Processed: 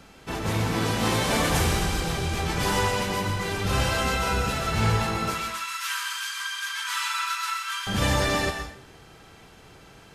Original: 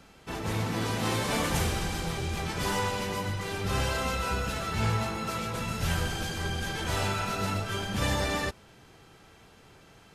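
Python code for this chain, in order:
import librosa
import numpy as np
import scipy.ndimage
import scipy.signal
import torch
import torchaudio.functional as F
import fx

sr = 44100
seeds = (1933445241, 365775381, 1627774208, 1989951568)

y = fx.steep_highpass(x, sr, hz=960.0, slope=96, at=(5.34, 7.87))
y = fx.rev_plate(y, sr, seeds[0], rt60_s=0.55, hf_ratio=0.95, predelay_ms=110, drr_db=6.5)
y = y * 10.0 ** (4.5 / 20.0)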